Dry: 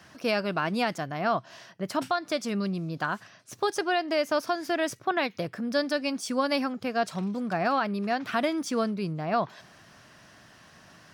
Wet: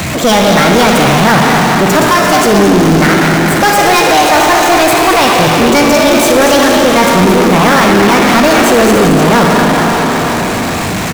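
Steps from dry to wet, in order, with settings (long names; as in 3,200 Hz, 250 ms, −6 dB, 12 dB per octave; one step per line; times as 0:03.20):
low-shelf EQ 210 Hz +11.5 dB
on a send: echo with shifted repeats 220 ms, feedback 44%, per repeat +55 Hz, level −9.5 dB
on the sum: formants moved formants +5 semitones
four-comb reverb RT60 3.4 s, DRR 1.5 dB
power curve on the samples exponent 0.35
level +7.5 dB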